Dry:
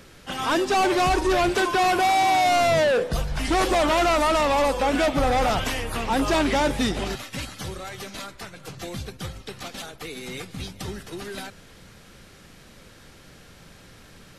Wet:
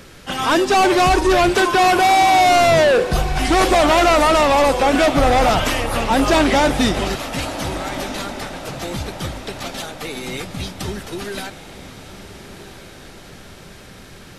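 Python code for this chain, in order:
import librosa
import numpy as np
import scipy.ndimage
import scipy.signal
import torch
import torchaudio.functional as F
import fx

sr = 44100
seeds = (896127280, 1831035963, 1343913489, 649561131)

y = fx.echo_diffused(x, sr, ms=1401, feedback_pct=51, wet_db=-13.5)
y = y * 10.0 ** (6.5 / 20.0)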